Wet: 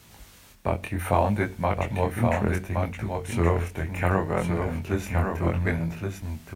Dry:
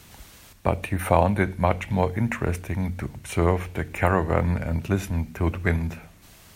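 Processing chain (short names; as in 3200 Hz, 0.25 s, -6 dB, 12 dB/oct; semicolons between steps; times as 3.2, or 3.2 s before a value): echo 1.12 s -4.5 dB; bit-crush 11-bit; chorus 0.67 Hz, delay 18 ms, depth 7.6 ms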